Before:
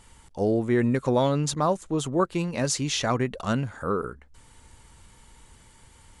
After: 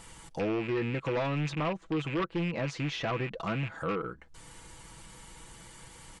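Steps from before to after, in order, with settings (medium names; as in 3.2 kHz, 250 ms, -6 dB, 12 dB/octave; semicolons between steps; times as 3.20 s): rattle on loud lows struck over -33 dBFS, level -22 dBFS; 1.50–3.55 s: treble shelf 5 kHz -5.5 dB; compression 1.5:1, threshold -47 dBFS, peak gain reduction 10.5 dB; bass shelf 73 Hz -7 dB; comb 6.1 ms, depth 54%; low-pass that closes with the level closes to 2.9 kHz, closed at -32 dBFS; sine folder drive 6 dB, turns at -20 dBFS; trim -5.5 dB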